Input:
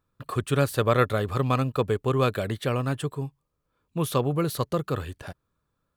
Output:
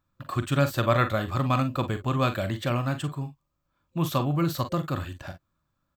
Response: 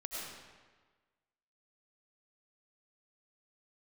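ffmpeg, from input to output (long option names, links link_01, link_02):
-af "superequalizer=7b=0.251:16b=0.251,aecho=1:1:42|54:0.316|0.168"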